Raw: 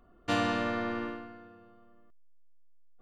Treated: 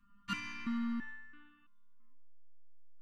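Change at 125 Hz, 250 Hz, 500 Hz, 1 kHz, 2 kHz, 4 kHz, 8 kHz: -11.5 dB, -4.5 dB, under -35 dB, -13.0 dB, -8.0 dB, -8.5 dB, no reading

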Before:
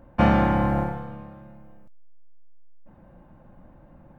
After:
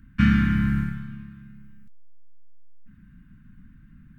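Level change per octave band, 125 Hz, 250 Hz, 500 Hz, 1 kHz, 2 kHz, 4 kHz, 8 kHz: +2.0 dB, +1.5 dB, under -25 dB, -12.5 dB, +2.0 dB, +1.5 dB, no reading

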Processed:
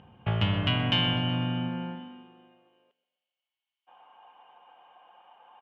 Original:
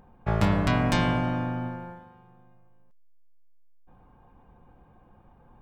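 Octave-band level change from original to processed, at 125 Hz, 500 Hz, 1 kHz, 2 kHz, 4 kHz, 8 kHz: -1.0 dB, -6.5 dB, -5.5 dB, -1.5 dB, +10.5 dB, under -15 dB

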